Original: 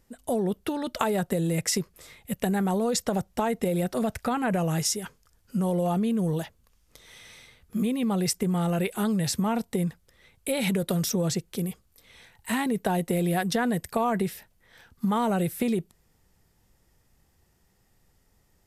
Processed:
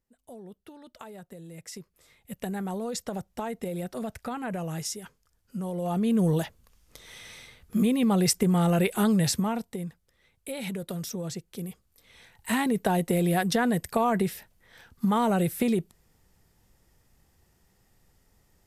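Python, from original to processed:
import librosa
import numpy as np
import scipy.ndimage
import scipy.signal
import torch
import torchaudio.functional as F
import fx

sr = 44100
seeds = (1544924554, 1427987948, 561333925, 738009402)

y = fx.gain(x, sr, db=fx.line((1.48, -18.5), (2.44, -7.0), (5.74, -7.0), (6.16, 3.0), (9.23, 3.0), (9.79, -8.0), (11.42, -8.0), (12.53, 1.0)))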